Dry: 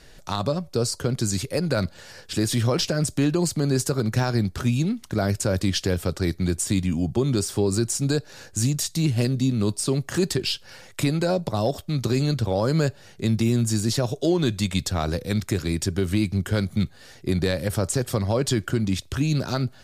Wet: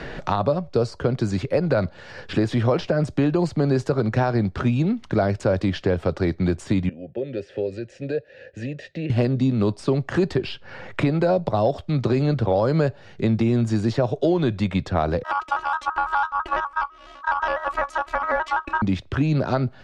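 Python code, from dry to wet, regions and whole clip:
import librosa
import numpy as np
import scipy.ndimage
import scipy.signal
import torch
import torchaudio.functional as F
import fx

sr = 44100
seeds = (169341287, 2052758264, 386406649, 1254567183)

y = fx.chain(x, sr, fx.vowel_filter(vowel='e'),
    fx.low_shelf(hz=120.0, db=11.5), at=(6.89, 9.1))
y = fx.chain(y, sr, fx.robotise(hz=309.0),
    fx.ring_mod(carrier_hz=1200.0),
    fx.vibrato_shape(shape='square', rate_hz=6.0, depth_cents=100.0), at=(15.23, 18.82))
y = scipy.signal.sosfilt(scipy.signal.butter(2, 2800.0, 'lowpass', fs=sr, output='sos'), y)
y = fx.dynamic_eq(y, sr, hz=670.0, q=0.87, threshold_db=-37.0, ratio=4.0, max_db=7)
y = fx.band_squash(y, sr, depth_pct=70)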